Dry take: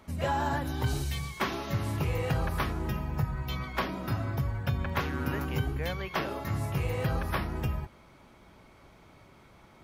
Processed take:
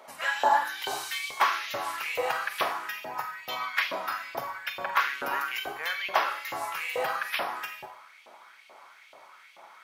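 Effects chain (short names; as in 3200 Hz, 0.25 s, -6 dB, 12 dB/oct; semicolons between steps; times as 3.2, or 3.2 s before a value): Schroeder reverb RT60 0.57 s, combs from 32 ms, DRR 6.5 dB; LFO high-pass saw up 2.3 Hz 550–2900 Hz; gain +3.5 dB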